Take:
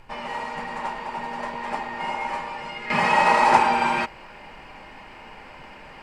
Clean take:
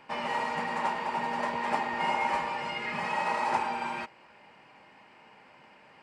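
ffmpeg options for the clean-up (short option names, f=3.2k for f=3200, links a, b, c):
-af "agate=range=-21dB:threshold=-36dB,asetnsamples=n=441:p=0,asendcmd='2.9 volume volume -12dB',volume=0dB"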